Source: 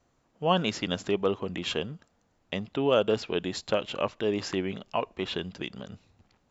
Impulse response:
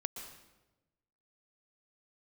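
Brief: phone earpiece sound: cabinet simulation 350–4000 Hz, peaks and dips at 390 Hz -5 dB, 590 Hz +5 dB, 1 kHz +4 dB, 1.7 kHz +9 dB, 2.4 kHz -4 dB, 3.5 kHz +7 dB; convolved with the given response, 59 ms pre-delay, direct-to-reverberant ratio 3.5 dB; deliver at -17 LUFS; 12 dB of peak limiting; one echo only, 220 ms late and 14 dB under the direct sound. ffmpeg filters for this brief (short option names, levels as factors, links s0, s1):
-filter_complex "[0:a]alimiter=limit=0.0794:level=0:latency=1,aecho=1:1:220:0.2,asplit=2[s0][s1];[1:a]atrim=start_sample=2205,adelay=59[s2];[s1][s2]afir=irnorm=-1:irlink=0,volume=0.668[s3];[s0][s3]amix=inputs=2:normalize=0,highpass=350,equalizer=f=390:t=q:w=4:g=-5,equalizer=f=590:t=q:w=4:g=5,equalizer=f=1000:t=q:w=4:g=4,equalizer=f=1700:t=q:w=4:g=9,equalizer=f=2400:t=q:w=4:g=-4,equalizer=f=3500:t=q:w=4:g=7,lowpass=f=4000:w=0.5412,lowpass=f=4000:w=1.3066,volume=7.08"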